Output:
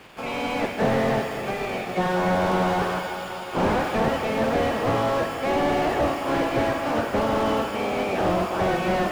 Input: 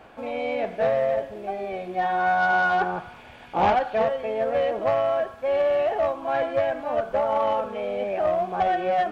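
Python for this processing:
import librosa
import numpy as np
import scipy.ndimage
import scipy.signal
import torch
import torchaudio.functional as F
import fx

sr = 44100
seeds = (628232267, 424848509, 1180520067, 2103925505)

p1 = fx.spec_clip(x, sr, under_db=20)
p2 = fx.highpass(p1, sr, hz=150.0, slope=6)
p3 = fx.sample_hold(p2, sr, seeds[0], rate_hz=2000.0, jitter_pct=0)
p4 = p2 + (p3 * 10.0 ** (-4.0 / 20.0))
p5 = p4 + 10.0 ** (-17.5 / 20.0) * np.pad(p4, (int(763 * sr / 1000.0), 0))[:len(p4)]
p6 = fx.rev_plate(p5, sr, seeds[1], rt60_s=3.7, hf_ratio=0.9, predelay_ms=0, drr_db=7.5)
y = fx.slew_limit(p6, sr, full_power_hz=76.0)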